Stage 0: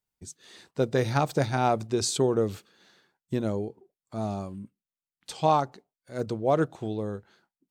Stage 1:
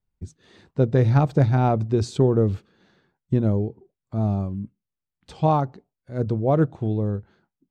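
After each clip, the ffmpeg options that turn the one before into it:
-af "aemphasis=mode=reproduction:type=riaa"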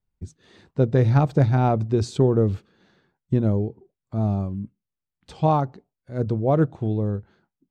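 -af anull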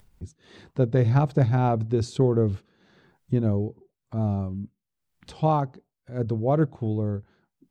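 -af "acompressor=mode=upward:threshold=-37dB:ratio=2.5,volume=-2.5dB"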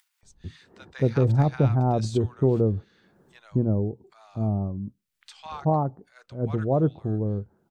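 -filter_complex "[0:a]acrossover=split=1200[a][b];[a]adelay=230[c];[c][b]amix=inputs=2:normalize=0"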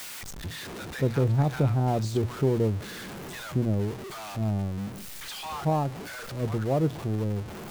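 -af "aeval=exprs='val(0)+0.5*0.0335*sgn(val(0))':c=same,volume=-4dB"

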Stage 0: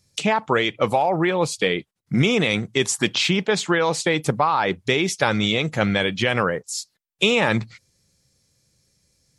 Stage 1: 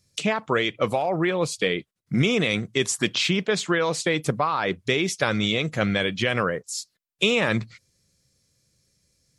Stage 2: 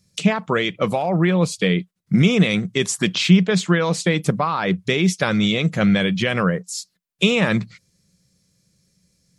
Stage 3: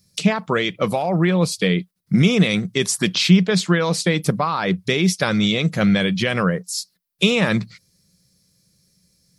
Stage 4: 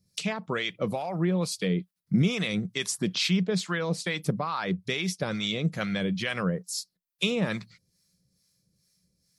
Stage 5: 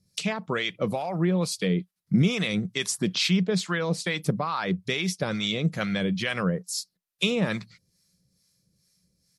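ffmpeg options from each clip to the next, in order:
-af "equalizer=f=850:t=o:w=0.22:g=-8.5,volume=-2.5dB"
-af "equalizer=f=180:w=4:g=13.5,volume=2dB"
-af "aexciter=amount=2.2:drive=0.9:freq=4.1k"
-filter_complex "[0:a]acrossover=split=710[a][b];[a]aeval=exprs='val(0)*(1-0.7/2+0.7/2*cos(2*PI*2.3*n/s))':c=same[c];[b]aeval=exprs='val(0)*(1-0.7/2-0.7/2*cos(2*PI*2.3*n/s))':c=same[d];[c][d]amix=inputs=2:normalize=0,volume=-6.5dB"
-af "aresample=32000,aresample=44100,volume=2dB"

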